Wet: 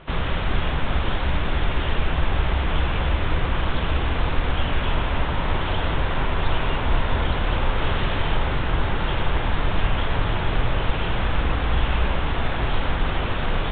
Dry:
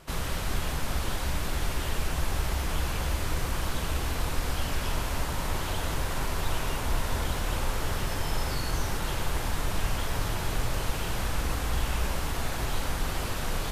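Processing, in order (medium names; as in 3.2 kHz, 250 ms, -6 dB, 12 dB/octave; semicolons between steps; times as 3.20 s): 7.78–8.35 s: one-bit delta coder 32 kbps, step -29.5 dBFS; trim +7.5 dB; µ-law 64 kbps 8 kHz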